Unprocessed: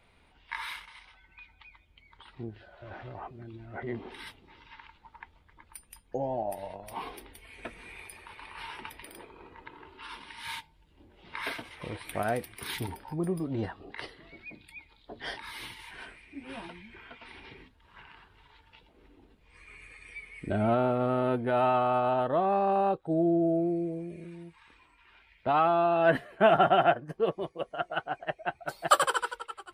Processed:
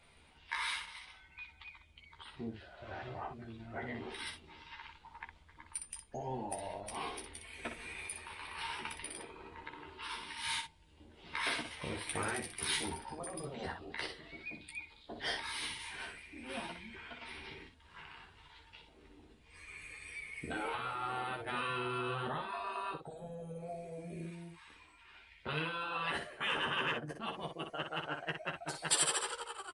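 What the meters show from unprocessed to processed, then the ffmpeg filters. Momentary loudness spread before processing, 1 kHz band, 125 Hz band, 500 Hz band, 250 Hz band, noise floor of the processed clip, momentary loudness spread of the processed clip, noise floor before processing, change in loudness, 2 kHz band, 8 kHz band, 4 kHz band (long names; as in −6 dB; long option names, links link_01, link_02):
22 LU, −11.0 dB, −9.5 dB, −15.0 dB, −13.0 dB, −62 dBFS, 17 LU, −63 dBFS, −10.5 dB, −2.5 dB, +5.5 dB, +1.5 dB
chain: -filter_complex "[0:a]afftfilt=real='re*lt(hypot(re,im),0.112)':imag='im*lt(hypot(re,im),0.112)':win_size=1024:overlap=0.75,highshelf=frequency=4400:gain=10,asplit=2[link_01][link_02];[link_02]aeval=exprs='0.0596*(abs(mod(val(0)/0.0596+3,4)-2)-1)':channel_layout=same,volume=-11.5dB[link_03];[link_01][link_03]amix=inputs=2:normalize=0,aecho=1:1:13|61:0.631|0.473,aresample=22050,aresample=44100,volume=-5dB"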